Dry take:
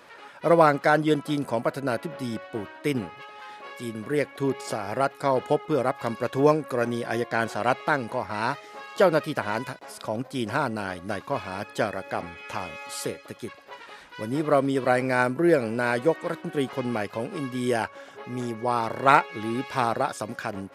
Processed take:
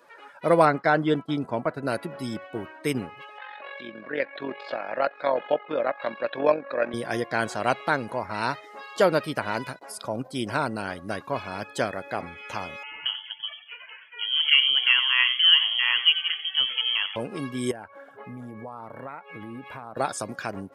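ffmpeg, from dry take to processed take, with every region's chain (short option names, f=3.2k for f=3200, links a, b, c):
-filter_complex "[0:a]asettb=1/sr,asplit=3[a][b][c];[a]atrim=end=0.654[d];[b]atrim=start=0.65:end=1.83,asetpts=PTS-STARTPTS,afade=t=in:d=0.004:c=qsin,afade=t=out:st=1.176:d=0.004:c=qsin,aemphasis=mode=reproduction:type=50fm,agate=range=-33dB:threshold=-34dB:ratio=3:release=100:detection=peak,bandreject=f=540:w=9.4[e];[c]atrim=start=1.826[f];[d][e]acrossfade=d=0.004:c1=hsin:c2=qsin[g];[g][f]acrossfade=d=0.004:c1=qsin:c2=hsin,asettb=1/sr,asplit=3[h][i][j];[h]atrim=end=3.384[k];[i]atrim=start=3.38:end=6.94,asetpts=PTS-STARTPTS,afade=t=in:d=0.004:c=qsin,afade=t=out:st=3.556:d=0.004:c=qsin,acompressor=mode=upward:threshold=-34dB:ratio=2.5:attack=3.2:release=140:knee=2.83:detection=peak,tremolo=f=45:d=0.621,highpass=290,equalizer=f=410:t=q:w=4:g=-6,equalizer=f=580:t=q:w=4:g=8,equalizer=f=1.7k:t=q:w=4:g=6,equalizer=f=2.5k:t=q:w=4:g=4,equalizer=f=3.9k:t=q:w=4:g=4,lowpass=f=4.2k:w=0.5412,lowpass=f=4.2k:w=1.3066[l];[j]atrim=start=6.936[m];[k][l]acrossfade=d=0.004:c1=hsin:c2=qsin[n];[n][m]acrossfade=d=0.004:c1=qsin:c2=hsin,asettb=1/sr,asplit=3[o][p][q];[o]atrim=end=12.834[r];[p]atrim=start=12.83:end=17.16,asetpts=PTS-STARTPTS,afade=t=in:d=0.004:c=qsin,afade=t=out:st=4.326:d=0.004:c=qsin,asplit=5[s][t][u][v][w];[t]adelay=89,afreqshift=-89,volume=-11dB[x];[u]adelay=178,afreqshift=-178,volume=-20.6dB[y];[v]adelay=267,afreqshift=-267,volume=-30.3dB[z];[w]adelay=356,afreqshift=-356,volume=-39.9dB[aa];[s][x][y][z][aa]amix=inputs=5:normalize=0,atrim=end_sample=190953,lowpass=f=2.9k:t=q:w=0.5098,lowpass=f=2.9k:t=q:w=0.6013,lowpass=f=2.9k:t=q:w=0.9,lowpass=f=2.9k:t=q:w=2.563,afreqshift=-3400[ab];[q]atrim=start=17.156[ac];[r][ab]acrossfade=d=0.004:c1=hsin:c2=qsin[ad];[ad][ac]acrossfade=d=0.004:c1=qsin:c2=hsin,asettb=1/sr,asplit=3[ae][af][ag];[ae]atrim=end=17.714[ah];[af]atrim=start=17.71:end=19.97,asetpts=PTS-STARTPTS,afade=t=in:d=0.004:c=qsin,afade=t=out:st=2.256:d=0.004:c=qsin,bandreject=f=370:w=5.3,acompressor=threshold=-33dB:ratio=8:attack=3.2:release=140:knee=1:detection=peak,equalizer=f=6.2k:t=o:w=1.3:g=-13.5[ai];[ag]atrim=start=19.966[aj];[ah][ai]acrossfade=d=0.004:c1=hsin:c2=qsin[ak];[ak][aj]acrossfade=d=0.004:c1=qsin:c2=hsin,afftdn=nr=14:nf=-47,highshelf=f=4.9k:g=10.5,volume=-1dB"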